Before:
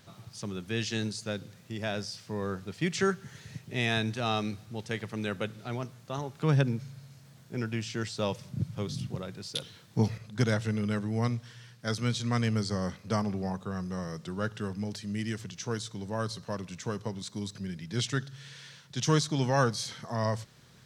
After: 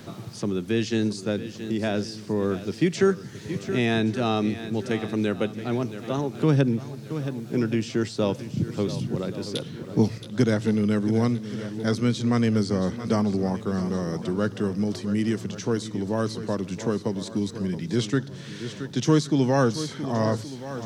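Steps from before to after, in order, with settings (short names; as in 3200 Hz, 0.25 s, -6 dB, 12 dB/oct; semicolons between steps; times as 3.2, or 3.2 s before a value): bell 310 Hz +11 dB 1.5 oct; swung echo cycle 1.122 s, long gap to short 1.5:1, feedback 33%, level -14.5 dB; three-band squash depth 40%; gain +1.5 dB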